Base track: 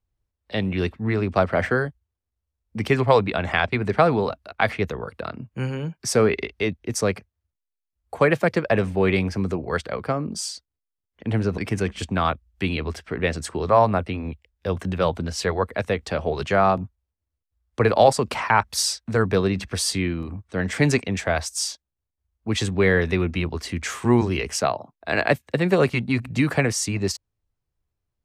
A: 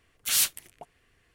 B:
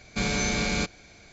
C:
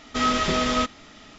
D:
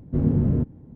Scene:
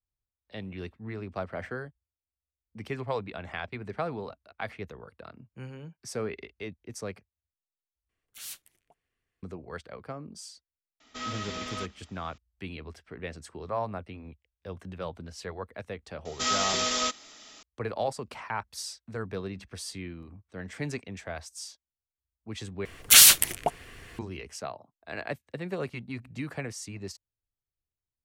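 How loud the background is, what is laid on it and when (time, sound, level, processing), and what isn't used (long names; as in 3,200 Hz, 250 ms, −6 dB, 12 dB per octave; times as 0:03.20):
base track −15 dB
0:08.09: overwrite with A −18 dB
0:11.00: mix in C −14.5 dB + spectral tilt +1.5 dB per octave
0:16.25: mix in C −6.5 dB + bass and treble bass −13 dB, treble +14 dB
0:22.85: overwrite with A −2.5 dB + boost into a limiter +21 dB
not used: B, D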